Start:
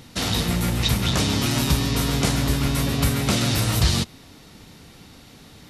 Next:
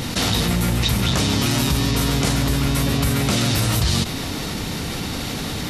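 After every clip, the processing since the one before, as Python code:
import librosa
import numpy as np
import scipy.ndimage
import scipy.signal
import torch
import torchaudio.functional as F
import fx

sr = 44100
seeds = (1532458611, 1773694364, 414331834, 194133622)

y = fx.env_flatten(x, sr, amount_pct=70)
y = y * 10.0 ** (-2.5 / 20.0)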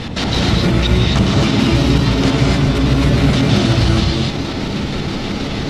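y = fx.filter_lfo_lowpass(x, sr, shape='square', hz=6.3, low_hz=810.0, high_hz=4200.0, q=0.83)
y = fx.wow_flutter(y, sr, seeds[0], rate_hz=2.1, depth_cents=87.0)
y = fx.rev_gated(y, sr, seeds[1], gate_ms=290, shape='rising', drr_db=-2.5)
y = y * 10.0 ** (2.0 / 20.0)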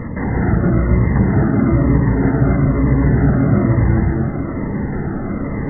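y = fx.brickwall_lowpass(x, sr, high_hz=2100.0)
y = fx.notch_cascade(y, sr, direction='falling', hz=1.1)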